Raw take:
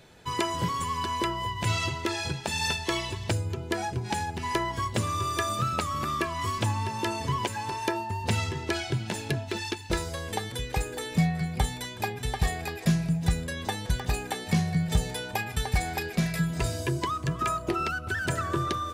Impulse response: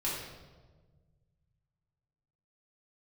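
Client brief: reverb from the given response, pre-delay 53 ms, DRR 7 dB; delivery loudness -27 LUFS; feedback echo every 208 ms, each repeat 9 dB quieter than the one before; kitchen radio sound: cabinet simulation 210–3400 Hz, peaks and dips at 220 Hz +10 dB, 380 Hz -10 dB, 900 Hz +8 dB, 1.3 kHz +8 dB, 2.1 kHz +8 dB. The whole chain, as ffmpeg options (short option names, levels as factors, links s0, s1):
-filter_complex "[0:a]aecho=1:1:208|416|624|832:0.355|0.124|0.0435|0.0152,asplit=2[s0][s1];[1:a]atrim=start_sample=2205,adelay=53[s2];[s1][s2]afir=irnorm=-1:irlink=0,volume=0.237[s3];[s0][s3]amix=inputs=2:normalize=0,highpass=210,equalizer=f=220:t=q:w=4:g=10,equalizer=f=380:t=q:w=4:g=-10,equalizer=f=900:t=q:w=4:g=8,equalizer=f=1300:t=q:w=4:g=8,equalizer=f=2100:t=q:w=4:g=8,lowpass=f=3400:w=0.5412,lowpass=f=3400:w=1.3066,volume=0.841"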